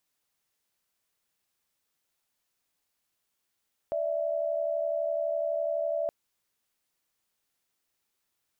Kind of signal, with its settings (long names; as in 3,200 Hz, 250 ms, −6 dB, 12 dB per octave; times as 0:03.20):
held notes D5/E5 sine, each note −29.5 dBFS 2.17 s